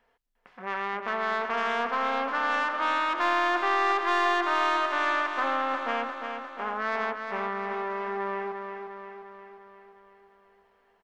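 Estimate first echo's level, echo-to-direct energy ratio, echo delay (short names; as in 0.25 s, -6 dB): -6.5 dB, -4.5 dB, 0.352 s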